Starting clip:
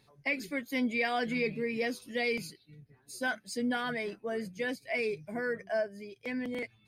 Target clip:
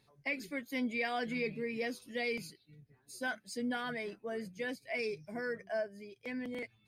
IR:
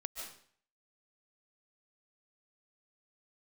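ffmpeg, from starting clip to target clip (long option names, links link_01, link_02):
-filter_complex "[0:a]asettb=1/sr,asplit=3[link_01][link_02][link_03];[link_01]atrim=end=4.994[link_04];[link_02]atrim=start=4.99:end=5.58,asetpts=PTS-STARTPTS,afade=type=in:duration=0.004:curve=qsin,afade=type=out:start_time=0.586:duration=0.004:curve=qsin,equalizer=frequency=5400:width_type=o:width=0.23:gain=13.5[link_05];[link_03]atrim=start=5.576[link_06];[link_04][link_05]acrossfade=duration=0.004:curve1=hsin:curve2=qsin[link_07];[link_07][link_06]acrossfade=duration=0.004:curve1=qsin:curve2=hsin,volume=-4.5dB"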